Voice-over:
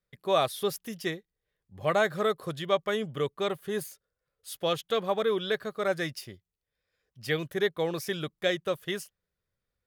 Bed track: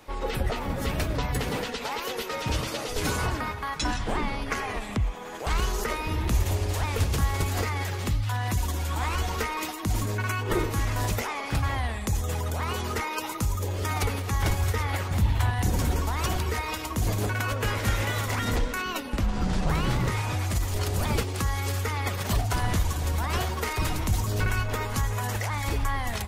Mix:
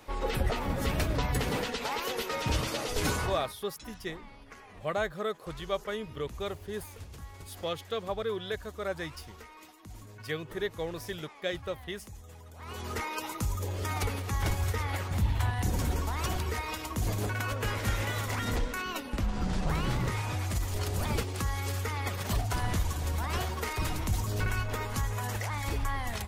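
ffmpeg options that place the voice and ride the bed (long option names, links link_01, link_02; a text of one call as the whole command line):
ffmpeg -i stem1.wav -i stem2.wav -filter_complex "[0:a]adelay=3000,volume=-6dB[link_01];[1:a]volume=14.5dB,afade=type=out:start_time=3.07:duration=0.48:silence=0.112202,afade=type=in:start_time=12.56:duration=0.45:silence=0.158489[link_02];[link_01][link_02]amix=inputs=2:normalize=0" out.wav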